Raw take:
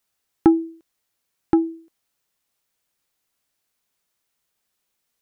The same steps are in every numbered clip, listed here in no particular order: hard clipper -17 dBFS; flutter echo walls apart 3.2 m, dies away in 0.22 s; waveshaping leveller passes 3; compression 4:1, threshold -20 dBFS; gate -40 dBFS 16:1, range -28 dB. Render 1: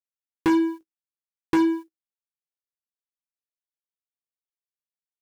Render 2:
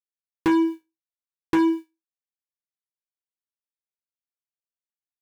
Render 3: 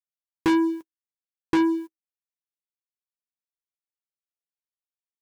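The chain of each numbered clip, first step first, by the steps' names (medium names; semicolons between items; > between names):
flutter echo > gate > compression > waveshaping leveller > hard clipper; gate > compression > waveshaping leveller > flutter echo > hard clipper; flutter echo > gate > hard clipper > compression > waveshaping leveller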